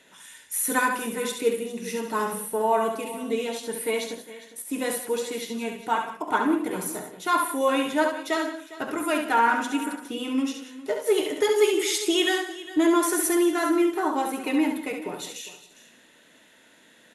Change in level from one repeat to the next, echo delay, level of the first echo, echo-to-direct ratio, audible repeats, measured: no regular repeats, 69 ms, -6.0 dB, -4.5 dB, 5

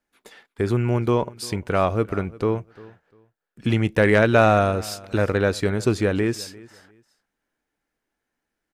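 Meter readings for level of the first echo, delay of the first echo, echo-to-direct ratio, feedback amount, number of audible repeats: -21.5 dB, 349 ms, -21.5 dB, 23%, 2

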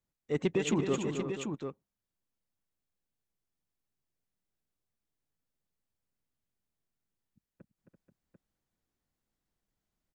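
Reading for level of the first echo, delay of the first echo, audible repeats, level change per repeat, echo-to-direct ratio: -7.5 dB, 267 ms, 4, no regular repeats, -2.5 dB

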